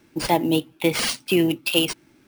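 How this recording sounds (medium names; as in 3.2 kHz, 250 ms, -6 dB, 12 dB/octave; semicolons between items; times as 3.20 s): aliases and images of a low sample rate 14 kHz, jitter 0%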